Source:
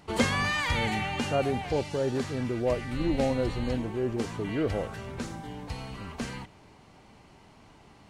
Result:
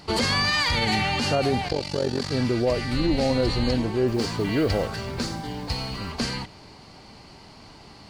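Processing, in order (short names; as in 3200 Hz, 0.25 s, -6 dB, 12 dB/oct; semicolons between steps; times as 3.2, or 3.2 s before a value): bell 4600 Hz +14 dB 0.39 oct; limiter -20.5 dBFS, peak gain reduction 10.5 dB; 1.68–2.32 AM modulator 46 Hz, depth 75%; 4.07–6.12 modulation noise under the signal 31 dB; gain +7 dB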